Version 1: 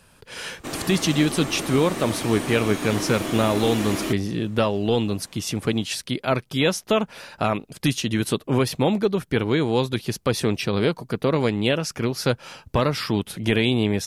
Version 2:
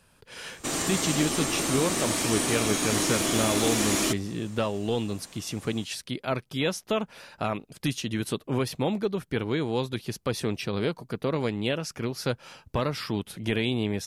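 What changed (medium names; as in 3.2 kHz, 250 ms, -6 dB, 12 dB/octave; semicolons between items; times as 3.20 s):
speech -6.5 dB; background: add peaking EQ 7.2 kHz +11 dB 1.7 oct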